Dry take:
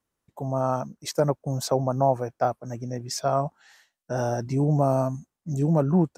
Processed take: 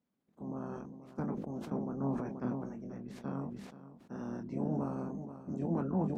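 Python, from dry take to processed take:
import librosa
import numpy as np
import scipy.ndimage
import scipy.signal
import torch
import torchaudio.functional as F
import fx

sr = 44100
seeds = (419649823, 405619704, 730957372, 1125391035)

p1 = fx.spec_clip(x, sr, under_db=29)
p2 = fx.chorus_voices(p1, sr, voices=4, hz=0.5, base_ms=23, depth_ms=3.2, mix_pct=30)
p3 = fx.dmg_noise_colour(p2, sr, seeds[0], colour='white', level_db=-63.0)
p4 = fx.bandpass_q(p3, sr, hz=210.0, q=2.6)
p5 = p4 + fx.echo_single(p4, sr, ms=481, db=-14.5, dry=0)
y = fx.sustainer(p5, sr, db_per_s=43.0)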